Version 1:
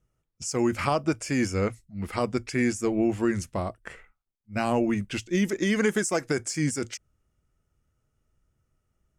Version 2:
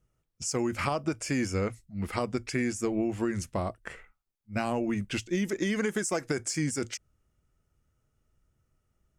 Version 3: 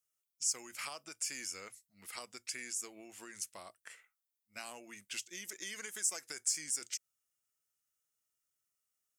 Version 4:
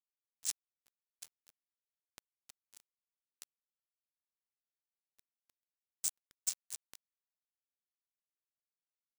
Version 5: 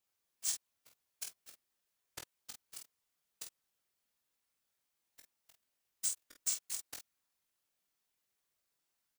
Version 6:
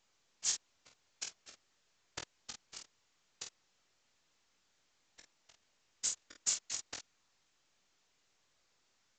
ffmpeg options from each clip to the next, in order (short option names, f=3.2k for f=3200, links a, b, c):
-af "acompressor=threshold=-25dB:ratio=6"
-af "aderivative,volume=1dB"
-af "aecho=1:1:159:0.188,acrusher=bits=3:mix=0:aa=0.5,areverse,acompressor=mode=upward:threshold=-57dB:ratio=2.5,areverse,volume=2dB"
-filter_complex "[0:a]alimiter=level_in=2.5dB:limit=-24dB:level=0:latency=1:release=109,volume=-2.5dB,afftfilt=real='hypot(re,im)*cos(2*PI*random(0))':imag='hypot(re,im)*sin(2*PI*random(1))':win_size=512:overlap=0.75,asplit=2[a][b];[b]aecho=0:1:21|48:0.473|0.501[c];[a][c]amix=inputs=2:normalize=0,volume=16dB"
-af "volume=5dB" -ar 16000 -c:a pcm_mulaw